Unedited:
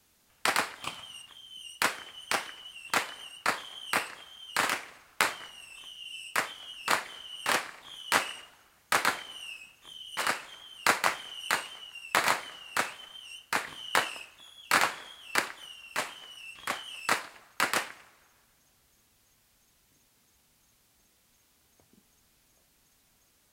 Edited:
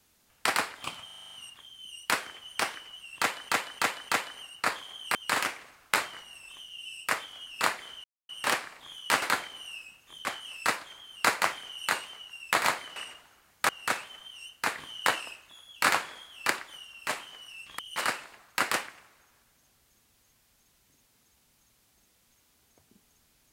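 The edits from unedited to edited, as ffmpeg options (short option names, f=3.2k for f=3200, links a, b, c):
-filter_complex "[0:a]asplit=20[a][b][c][d][e][f][g][h][i][j][k][l][m][n][o][p][q][r][s][t];[a]atrim=end=1.092[u];[b]atrim=start=1.048:end=1.092[v];[c]atrim=start=1.048:end=1.092[w];[d]atrim=start=1.048:end=1.092[x];[e]atrim=start=1.048:end=1.092[y];[f]atrim=start=1.048:end=1.092[z];[g]atrim=start=1.048:end=1.092[aa];[h]atrim=start=1.048:end=3.212[ab];[i]atrim=start=2.908:end=3.212[ac];[j]atrim=start=2.908:end=3.212[ad];[k]atrim=start=2.908:end=3.972[ae];[l]atrim=start=4.418:end=7.31,asetpts=PTS-STARTPTS,afade=t=out:st=2.888:d=0.004:c=hsin,apad=pad_dur=0.25[af];[m]atrim=start=7.31:end=8.242,asetpts=PTS-STARTPTS,afade=t=in:d=0.004:c=hsin[ag];[n]atrim=start=8.968:end=10.002[ah];[o]atrim=start=16.678:end=17.272[ai];[p]atrim=start=10.458:end=12.582[aj];[q]atrim=start=8.238:end=8.972[ak];[r]atrim=start=12.578:end=16.682[al];[s]atrim=start=9.998:end=10.462[am];[t]atrim=start=17.268[an];[u][v]acrossfade=d=0.004:c1=hsin:c2=hsin[ao];[ao][w]acrossfade=d=0.004:c1=hsin:c2=hsin[ap];[ap][x]acrossfade=d=0.004:c1=hsin:c2=hsin[aq];[aq][y]acrossfade=d=0.004:c1=hsin:c2=hsin[ar];[ar][z]acrossfade=d=0.004:c1=hsin:c2=hsin[as];[as][aa]acrossfade=d=0.004:c1=hsin:c2=hsin[at];[at][ab]acrossfade=d=0.004:c1=hsin:c2=hsin[au];[au][ac]acrossfade=d=0.004:c1=hsin:c2=hsin[av];[av][ad]acrossfade=d=0.004:c1=hsin:c2=hsin[aw];[aw][ae]acrossfade=d=0.004:c1=hsin:c2=hsin[ax];[af][ag]concat=n=2:v=0:a=1[ay];[ax][ay]acrossfade=d=0.004:c1=hsin:c2=hsin[az];[az][ah]acrossfade=d=0.004:c1=hsin:c2=hsin[ba];[ba][ai]acrossfade=d=0.004:c1=hsin:c2=hsin[bb];[bb][aj]acrossfade=d=0.004:c1=hsin:c2=hsin[bc];[bc][ak]acrossfade=d=0.004:c1=hsin:c2=hsin[bd];[bd][al]acrossfade=d=0.004:c1=hsin:c2=hsin[be];[be][am]acrossfade=d=0.004:c1=hsin:c2=hsin[bf];[bf][an]acrossfade=d=0.004:c1=hsin:c2=hsin"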